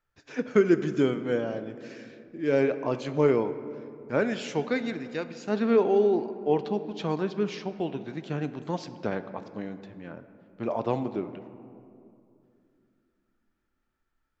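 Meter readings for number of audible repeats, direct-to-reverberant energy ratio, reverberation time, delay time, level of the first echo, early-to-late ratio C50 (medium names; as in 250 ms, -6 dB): no echo, 11.0 dB, 2.6 s, no echo, no echo, 12.5 dB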